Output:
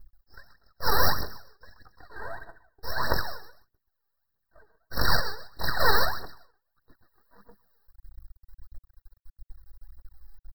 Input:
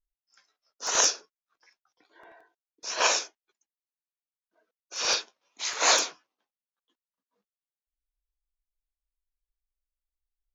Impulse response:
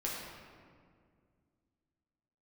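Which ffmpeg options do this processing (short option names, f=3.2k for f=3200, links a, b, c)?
-filter_complex "[0:a]apsyclip=26dB,asplit=2[a][b];[b]aecho=0:1:130|260|390:0.447|0.103|0.0236[c];[a][c]amix=inputs=2:normalize=0,aphaser=in_gain=1:out_gain=1:delay=2.6:decay=0.75:speed=1.6:type=triangular,aeval=exprs='max(val(0),0)':c=same,dynaudnorm=f=140:g=11:m=7dB,equalizer=f=170:w=1.7:g=-5,aeval=exprs='1*(cos(1*acos(clip(val(0)/1,-1,1)))-cos(1*PI/2))+0.2*(cos(3*acos(clip(val(0)/1,-1,1)))-cos(3*PI/2))+0.0891*(cos(5*acos(clip(val(0)/1,-1,1)))-cos(5*PI/2))+0.2*(cos(6*acos(clip(val(0)/1,-1,1)))-cos(6*PI/2))+0.158*(cos(8*acos(clip(val(0)/1,-1,1)))-cos(8*PI/2))':c=same,firequalizer=gain_entry='entry(170,0);entry(270,-7);entry(1600,-5);entry(9600,-26);entry(14000,-2)':delay=0.05:min_phase=1,asplit=2[d][e];[e]acrusher=bits=4:mode=log:mix=0:aa=0.000001,volume=-8dB[f];[d][f]amix=inputs=2:normalize=0,afftfilt=real='re*eq(mod(floor(b*sr/1024/1900),2),0)':imag='im*eq(mod(floor(b*sr/1024/1900),2),0)':win_size=1024:overlap=0.75"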